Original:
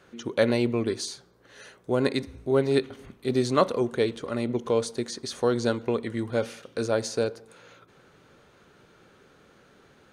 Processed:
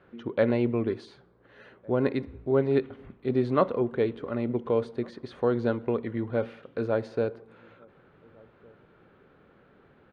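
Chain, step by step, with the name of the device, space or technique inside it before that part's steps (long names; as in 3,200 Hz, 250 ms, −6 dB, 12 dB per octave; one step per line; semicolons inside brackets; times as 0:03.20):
shout across a valley (high-frequency loss of the air 480 metres; slap from a distant wall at 250 metres, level −27 dB)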